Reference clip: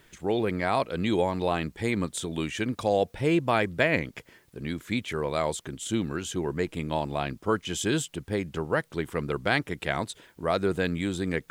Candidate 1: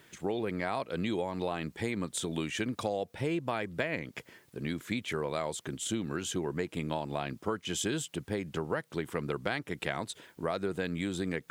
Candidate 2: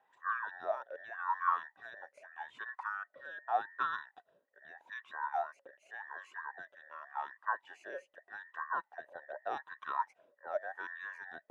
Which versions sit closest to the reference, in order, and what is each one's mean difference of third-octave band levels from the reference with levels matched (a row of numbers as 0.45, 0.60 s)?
1, 2; 3.0, 17.0 dB